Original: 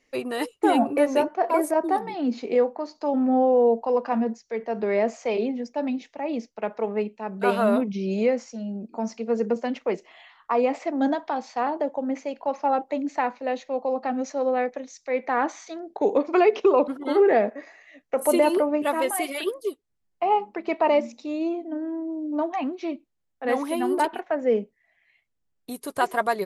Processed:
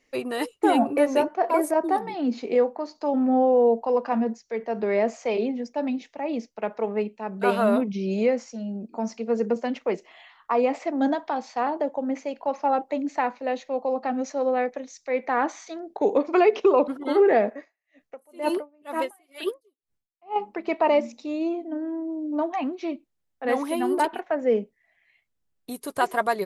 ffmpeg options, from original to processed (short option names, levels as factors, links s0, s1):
-filter_complex "[0:a]asettb=1/sr,asplit=3[s0][s1][s2];[s0]atrim=end=17.564[s3];[s1]atrim=start=17.56:end=20.36,asetpts=PTS-STARTPTS,afade=t=in:d=0.004:c=qsin,afade=t=out:st=2.796:d=0.004:c=qsin,aeval=exprs='val(0)*pow(10,-37*(0.5-0.5*cos(2*PI*2.1*n/s))/20)':c=same[s4];[s2]atrim=start=20.356[s5];[s3][s4]acrossfade=d=0.004:c1=hsin:c2=qsin[s6];[s6][s5]acrossfade=d=0.004:c1=qsin:c2=hsin"